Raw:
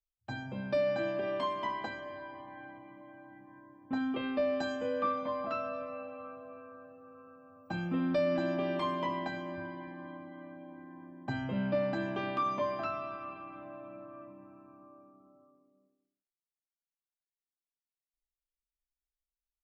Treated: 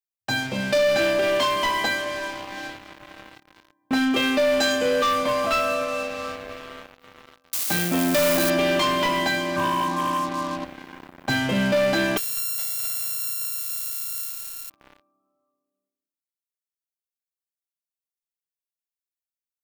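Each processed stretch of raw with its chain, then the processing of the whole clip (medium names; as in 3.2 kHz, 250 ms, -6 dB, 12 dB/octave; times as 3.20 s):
7.53–8.50 s: zero-crossing glitches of -29 dBFS + transformer saturation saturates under 600 Hz
9.56–10.65 s: resonant low-pass 1.1 kHz, resonance Q 11 + peaking EQ 140 Hz +7.5 dB 1.9 oct
12.17–14.70 s: sorted samples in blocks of 32 samples + differentiator + compression 4:1, threshold -42 dBFS
whole clip: tilt EQ +3 dB/octave; waveshaping leveller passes 5; dynamic bell 1 kHz, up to -5 dB, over -40 dBFS, Q 1.2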